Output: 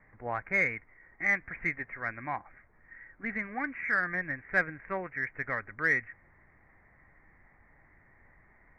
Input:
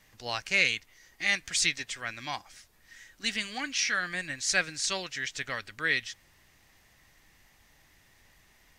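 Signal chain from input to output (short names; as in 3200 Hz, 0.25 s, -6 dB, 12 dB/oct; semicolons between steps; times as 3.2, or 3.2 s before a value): steep low-pass 2200 Hz 96 dB/oct; in parallel at -10 dB: soft clip -26 dBFS, distortion -12 dB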